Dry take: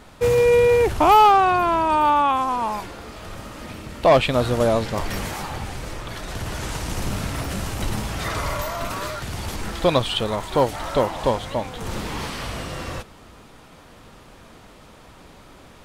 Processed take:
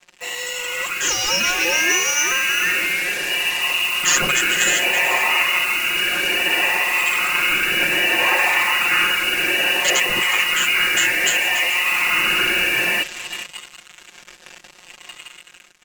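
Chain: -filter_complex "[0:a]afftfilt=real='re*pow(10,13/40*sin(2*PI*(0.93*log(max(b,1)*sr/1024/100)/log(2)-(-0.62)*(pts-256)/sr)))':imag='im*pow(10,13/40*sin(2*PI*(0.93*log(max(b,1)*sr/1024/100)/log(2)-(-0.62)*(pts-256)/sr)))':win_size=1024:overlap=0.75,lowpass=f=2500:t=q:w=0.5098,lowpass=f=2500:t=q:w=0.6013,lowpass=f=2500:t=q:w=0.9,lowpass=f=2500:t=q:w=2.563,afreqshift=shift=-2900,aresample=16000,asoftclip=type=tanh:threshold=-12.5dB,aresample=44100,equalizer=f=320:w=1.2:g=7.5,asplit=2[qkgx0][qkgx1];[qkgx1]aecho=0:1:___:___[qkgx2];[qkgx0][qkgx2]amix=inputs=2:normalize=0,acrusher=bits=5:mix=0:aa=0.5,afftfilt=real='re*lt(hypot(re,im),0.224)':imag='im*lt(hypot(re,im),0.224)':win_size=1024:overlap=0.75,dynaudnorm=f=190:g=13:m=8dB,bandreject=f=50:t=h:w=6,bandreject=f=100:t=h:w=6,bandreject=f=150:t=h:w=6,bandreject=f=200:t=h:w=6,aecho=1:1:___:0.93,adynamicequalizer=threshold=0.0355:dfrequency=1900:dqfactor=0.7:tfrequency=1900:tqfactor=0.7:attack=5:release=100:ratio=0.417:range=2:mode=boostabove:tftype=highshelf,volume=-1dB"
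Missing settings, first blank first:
439, 0.178, 5.6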